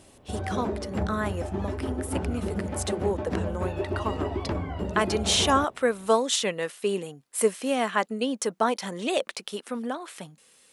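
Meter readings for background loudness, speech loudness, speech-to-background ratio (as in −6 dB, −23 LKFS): −32.0 LKFS, −28.5 LKFS, 3.5 dB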